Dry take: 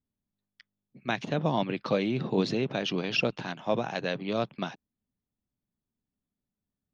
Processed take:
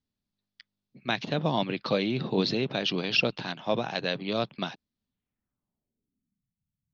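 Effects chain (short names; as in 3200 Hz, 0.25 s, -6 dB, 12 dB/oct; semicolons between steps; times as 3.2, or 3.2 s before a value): 1.17–1.9 short-mantissa float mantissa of 6-bit; low-pass sweep 4500 Hz -> 140 Hz, 5.04–6.48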